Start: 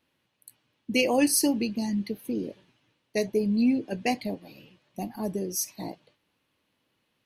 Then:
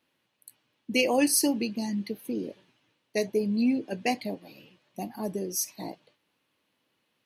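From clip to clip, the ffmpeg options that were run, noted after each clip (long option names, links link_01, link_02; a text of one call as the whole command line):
ffmpeg -i in.wav -af "highpass=frequency=180:poles=1" out.wav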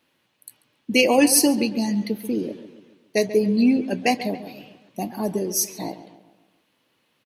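ffmpeg -i in.wav -filter_complex "[0:a]asplit=2[link_01][link_02];[link_02]adelay=138,lowpass=frequency=2800:poles=1,volume=-13dB,asplit=2[link_03][link_04];[link_04]adelay=138,lowpass=frequency=2800:poles=1,volume=0.49,asplit=2[link_05][link_06];[link_06]adelay=138,lowpass=frequency=2800:poles=1,volume=0.49,asplit=2[link_07][link_08];[link_08]adelay=138,lowpass=frequency=2800:poles=1,volume=0.49,asplit=2[link_09][link_10];[link_10]adelay=138,lowpass=frequency=2800:poles=1,volume=0.49[link_11];[link_01][link_03][link_05][link_07][link_09][link_11]amix=inputs=6:normalize=0,volume=7dB" out.wav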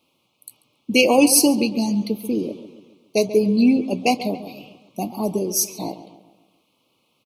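ffmpeg -i in.wav -af "asuperstop=centerf=1700:order=8:qfactor=1.8,volume=2dB" out.wav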